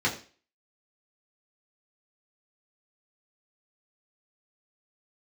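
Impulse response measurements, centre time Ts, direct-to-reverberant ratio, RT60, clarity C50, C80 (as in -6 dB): 19 ms, -5.0 dB, 0.40 s, 11.5 dB, 14.5 dB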